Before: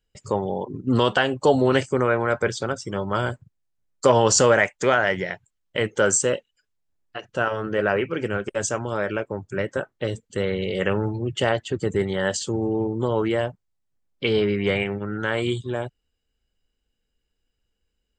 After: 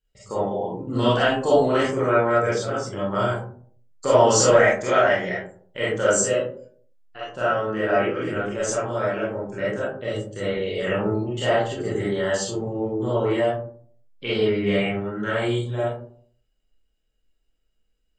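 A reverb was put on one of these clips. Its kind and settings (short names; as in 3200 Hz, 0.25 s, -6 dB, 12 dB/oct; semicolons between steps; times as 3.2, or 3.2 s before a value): digital reverb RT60 0.54 s, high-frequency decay 0.35×, pre-delay 5 ms, DRR -9.5 dB; gain -9.5 dB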